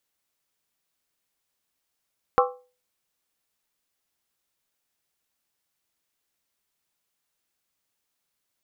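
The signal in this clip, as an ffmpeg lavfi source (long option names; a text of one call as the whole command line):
ffmpeg -f lavfi -i "aevalsrc='0.158*pow(10,-3*t/0.36)*sin(2*PI*499*t)+0.141*pow(10,-3*t/0.285)*sin(2*PI*795.4*t)+0.126*pow(10,-3*t/0.246)*sin(2*PI*1065.9*t)+0.112*pow(10,-3*t/0.238)*sin(2*PI*1145.7*t)+0.1*pow(10,-3*t/0.221)*sin(2*PI*1323.8*t)':duration=0.63:sample_rate=44100" out.wav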